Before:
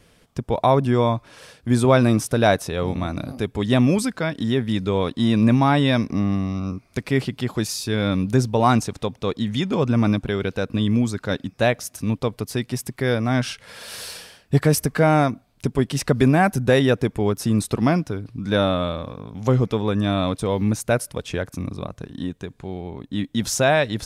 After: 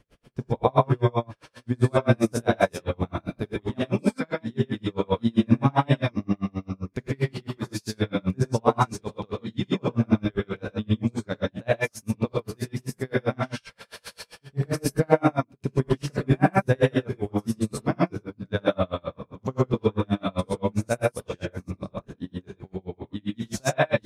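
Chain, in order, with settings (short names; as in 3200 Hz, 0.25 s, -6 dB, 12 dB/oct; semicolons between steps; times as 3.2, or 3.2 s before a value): high shelf 3600 Hz -8 dB; reverse echo 0.118 s -23.5 dB; non-linear reverb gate 0.16 s rising, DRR -6 dB; dB-linear tremolo 7.6 Hz, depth 37 dB; gain -4 dB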